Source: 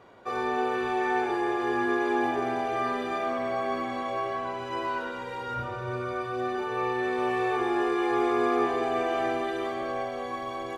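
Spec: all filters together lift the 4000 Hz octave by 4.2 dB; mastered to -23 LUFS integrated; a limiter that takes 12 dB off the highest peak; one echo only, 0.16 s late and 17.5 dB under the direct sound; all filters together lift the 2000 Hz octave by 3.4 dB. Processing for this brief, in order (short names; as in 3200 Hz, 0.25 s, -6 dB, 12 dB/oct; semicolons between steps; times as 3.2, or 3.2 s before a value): bell 2000 Hz +3.5 dB; bell 4000 Hz +4 dB; limiter -24.5 dBFS; echo 0.16 s -17.5 dB; gain +9.5 dB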